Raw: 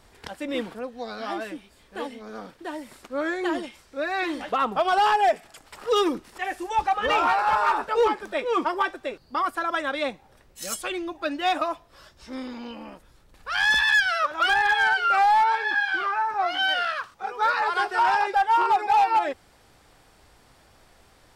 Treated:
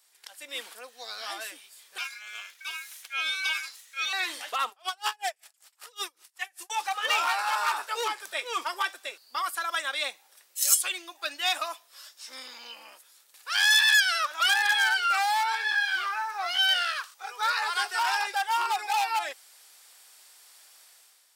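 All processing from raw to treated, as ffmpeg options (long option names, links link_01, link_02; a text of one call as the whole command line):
ffmpeg -i in.wav -filter_complex "[0:a]asettb=1/sr,asplit=3[link_01][link_02][link_03];[link_01]atrim=end=1.984[link_04];[link_02]atrim=start=1.98:end=4.13,asetpts=PTS-STARTPTS,afade=type=in:duration=0.004:curve=qsin,afade=type=out:start_time=2.146:duration=0.004:curve=qsin,equalizer=frequency=9000:width=5.2:gain=-3,aeval=exprs='val(0)*sin(2*PI*1900*n/s)':channel_layout=same[link_05];[link_03]atrim=start=4.126[link_06];[link_04][link_05]acrossfade=duration=0.004:curve1=hsin:curve2=qsin[link_07];[link_07][link_06]acrossfade=duration=0.004:curve1=qsin:curve2=hsin,asettb=1/sr,asplit=3[link_08][link_09][link_10];[link_08]atrim=end=4.694[link_11];[link_09]atrim=start=4.69:end=6.7,asetpts=PTS-STARTPTS,afade=type=in:duration=0.004:curve=qsin,afade=type=out:start_time=2.006:duration=0.004:curve=qsin,highpass=380,aeval=exprs='val(0)*pow(10,-35*(0.5-0.5*cos(2*PI*5.2*n/s))/20)':channel_layout=same[link_12];[link_10]atrim=start=6.696[link_13];[link_11][link_12]acrossfade=duration=0.004:curve1=hsin:curve2=qsin[link_14];[link_14][link_13]acrossfade=duration=0.004:curve1=qsin:curve2=hsin,highpass=380,aderivative,dynaudnorm=framelen=110:gausssize=9:maxgain=10.5dB" out.wav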